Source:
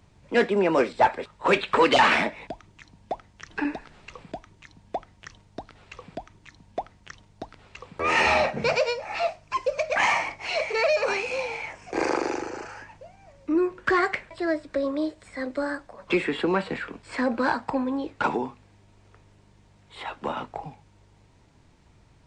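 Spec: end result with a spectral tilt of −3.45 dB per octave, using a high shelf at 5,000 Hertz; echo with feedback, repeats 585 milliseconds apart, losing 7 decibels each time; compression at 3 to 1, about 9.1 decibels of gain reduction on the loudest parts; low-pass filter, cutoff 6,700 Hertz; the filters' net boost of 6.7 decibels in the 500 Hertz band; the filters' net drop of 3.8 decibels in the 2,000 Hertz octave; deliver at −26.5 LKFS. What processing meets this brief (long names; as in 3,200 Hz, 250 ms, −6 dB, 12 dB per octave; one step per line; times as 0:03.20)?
low-pass filter 6,700 Hz
parametric band 500 Hz +8.5 dB
parametric band 2,000 Hz −4.5 dB
high-shelf EQ 5,000 Hz −4.5 dB
downward compressor 3 to 1, threshold −21 dBFS
repeating echo 585 ms, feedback 45%, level −7 dB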